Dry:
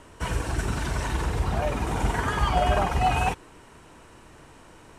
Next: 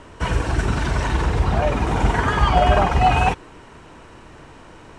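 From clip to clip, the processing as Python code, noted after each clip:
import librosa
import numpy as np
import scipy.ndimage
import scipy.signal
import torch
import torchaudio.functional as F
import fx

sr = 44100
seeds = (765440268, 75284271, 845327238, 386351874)

y = fx.air_absorb(x, sr, metres=69.0)
y = y * librosa.db_to_amplitude(7.0)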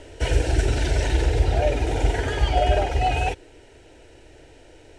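y = fx.rider(x, sr, range_db=3, speed_s=2.0)
y = fx.fixed_phaser(y, sr, hz=460.0, stages=4)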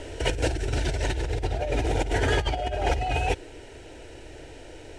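y = fx.over_compress(x, sr, threshold_db=-26.0, ratio=-1.0)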